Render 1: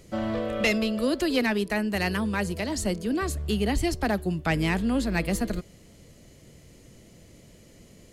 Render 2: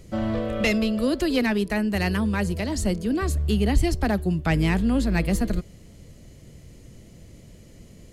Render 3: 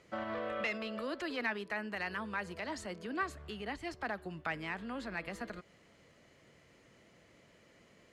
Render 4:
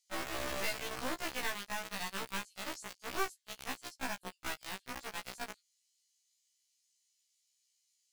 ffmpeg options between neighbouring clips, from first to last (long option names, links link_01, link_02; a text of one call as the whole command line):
ffmpeg -i in.wav -af "lowshelf=frequency=180:gain=9" out.wav
ffmpeg -i in.wav -af "alimiter=limit=-19.5dB:level=0:latency=1:release=114,bandpass=frequency=1400:width_type=q:width=1.1:csg=0" out.wav
ffmpeg -i in.wav -filter_complex "[0:a]acrossover=split=4700[link_01][link_02];[link_01]acrusher=bits=3:dc=4:mix=0:aa=0.000001[link_03];[link_03][link_02]amix=inputs=2:normalize=0,afftfilt=real='re*1.73*eq(mod(b,3),0)':imag='im*1.73*eq(mod(b,3),0)':win_size=2048:overlap=0.75,volume=4dB" out.wav